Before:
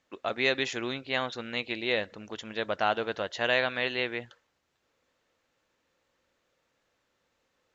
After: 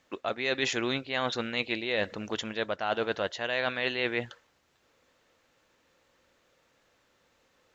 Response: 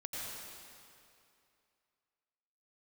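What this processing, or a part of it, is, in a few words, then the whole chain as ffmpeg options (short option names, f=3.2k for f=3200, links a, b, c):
compression on the reversed sound: -af "areverse,acompressor=threshold=-32dB:ratio=16,areverse,volume=7dB"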